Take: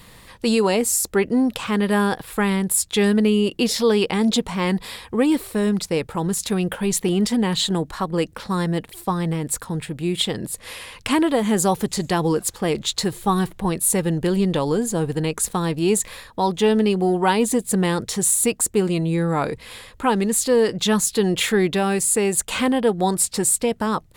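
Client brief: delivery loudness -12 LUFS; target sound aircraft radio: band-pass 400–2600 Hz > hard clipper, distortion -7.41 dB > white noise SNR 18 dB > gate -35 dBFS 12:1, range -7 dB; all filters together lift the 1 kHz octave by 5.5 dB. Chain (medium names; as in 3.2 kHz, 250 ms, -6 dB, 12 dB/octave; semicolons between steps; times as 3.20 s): band-pass 400–2600 Hz; peaking EQ 1 kHz +7 dB; hard clipper -19.5 dBFS; white noise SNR 18 dB; gate -35 dBFS 12:1, range -7 dB; trim +14.5 dB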